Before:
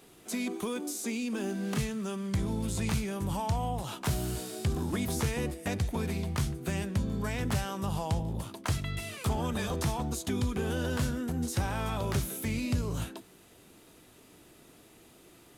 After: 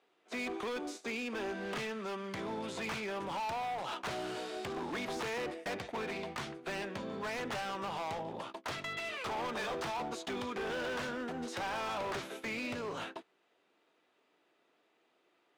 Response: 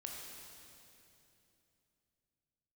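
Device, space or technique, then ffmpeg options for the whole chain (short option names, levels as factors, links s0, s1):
walkie-talkie: -af "highpass=490,lowpass=3000,asoftclip=type=hard:threshold=0.0106,agate=range=0.158:threshold=0.00355:ratio=16:detection=peak,volume=1.78"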